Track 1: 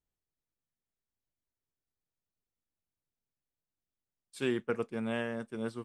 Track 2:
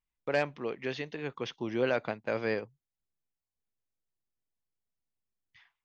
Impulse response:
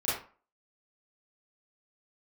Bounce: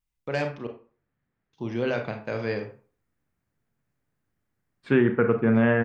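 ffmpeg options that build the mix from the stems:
-filter_complex "[0:a]equalizer=f=140:w=0.42:g=9.5,acontrast=67,lowpass=f=1.8k:t=q:w=2,adelay=500,volume=2.5dB,asplit=2[a][b];[b]volume=-14.5dB[c];[1:a]bass=f=250:g=7,treble=f=4k:g=4,volume=-2dB,asplit=3[d][e][f];[d]atrim=end=0.67,asetpts=PTS-STARTPTS,afade=t=out:st=0.666:d=0.004:c=hsin[g];[e]atrim=start=0.67:end=1.53,asetpts=PTS-STARTPTS,volume=0[h];[f]atrim=start=1.53,asetpts=PTS-STARTPTS,afade=t=in:d=0.004:c=hsin[i];[g][h][i]concat=n=3:v=0:a=1,asplit=2[j][k];[k]volume=-11dB[l];[2:a]atrim=start_sample=2205[m];[c][l]amix=inputs=2:normalize=0[n];[n][m]afir=irnorm=-1:irlink=0[o];[a][j][o]amix=inputs=3:normalize=0,alimiter=limit=-10.5dB:level=0:latency=1:release=207"

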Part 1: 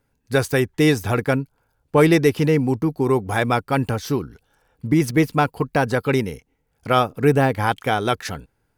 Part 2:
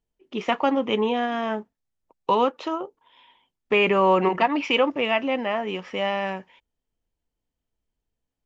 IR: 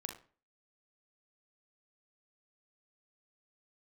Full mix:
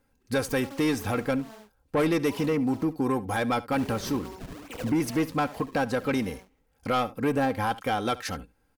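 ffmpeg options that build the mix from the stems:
-filter_complex "[0:a]aecho=1:1:3.8:0.49,asoftclip=type=tanh:threshold=-12dB,volume=-1dB,asplit=2[a][b];[b]volume=-19.5dB[c];[1:a]acrusher=samples=36:mix=1:aa=0.000001:lfo=1:lforange=57.6:lforate=2.5,volume=-19dB,asplit=2[d][e];[e]volume=-3.5dB[f];[c][f]amix=inputs=2:normalize=0,aecho=0:1:71:1[g];[a][d][g]amix=inputs=3:normalize=0,alimiter=limit=-18.5dB:level=0:latency=1:release=497"

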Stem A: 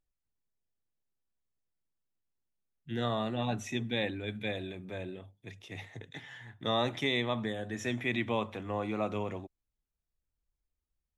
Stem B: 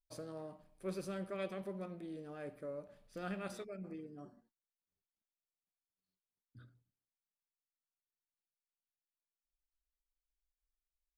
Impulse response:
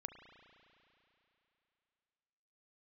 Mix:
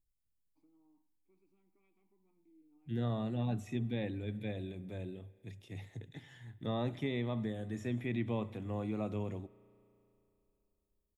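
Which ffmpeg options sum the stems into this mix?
-filter_complex "[0:a]bandreject=f=6k:w=10,acrossover=split=2800[a][b];[b]acompressor=threshold=-54dB:ratio=4:attack=1:release=60[c];[a][c]amix=inputs=2:normalize=0,equalizer=f=1.4k:w=0.31:g=-14,volume=1dB,asplit=2[d][e];[e]volume=-8.5dB[f];[1:a]acompressor=threshold=-43dB:ratio=4,asplit=3[g][h][i];[g]bandpass=f=300:t=q:w=8,volume=0dB[j];[h]bandpass=f=870:t=q:w=8,volume=-6dB[k];[i]bandpass=f=2.24k:t=q:w=8,volume=-9dB[l];[j][k][l]amix=inputs=3:normalize=0,adelay=450,volume=-12.5dB[m];[2:a]atrim=start_sample=2205[n];[f][n]afir=irnorm=-1:irlink=0[o];[d][m][o]amix=inputs=3:normalize=0"

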